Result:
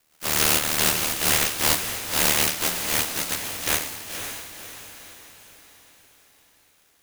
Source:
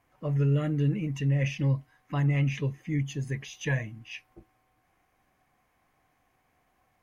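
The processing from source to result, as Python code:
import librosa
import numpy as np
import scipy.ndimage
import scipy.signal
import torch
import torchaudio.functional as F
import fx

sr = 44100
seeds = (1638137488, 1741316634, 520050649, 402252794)

y = fx.spec_flatten(x, sr, power=0.11)
y = y * np.sin(2.0 * np.pi * 38.0 * np.arange(len(y)) / sr)
y = fx.echo_diffused(y, sr, ms=526, feedback_pct=48, wet_db=-8.0)
y = F.gain(torch.from_numpy(y), 7.0).numpy()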